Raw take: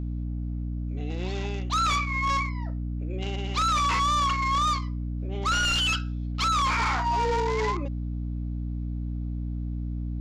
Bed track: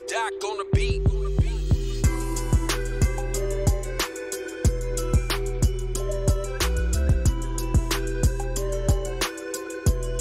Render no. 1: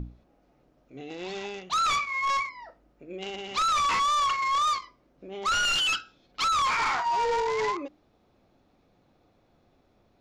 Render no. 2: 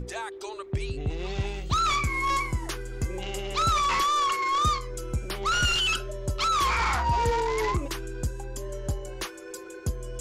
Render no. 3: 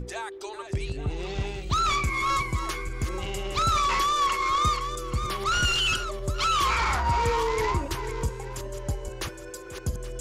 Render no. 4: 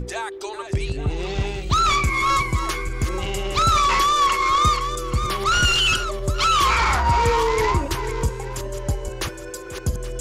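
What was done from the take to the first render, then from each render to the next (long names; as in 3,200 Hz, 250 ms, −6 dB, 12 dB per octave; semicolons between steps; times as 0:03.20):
mains-hum notches 60/120/180/240/300 Hz
mix in bed track −8.5 dB
feedback delay that plays each chunk backwards 413 ms, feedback 42%, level −9.5 dB
level +6 dB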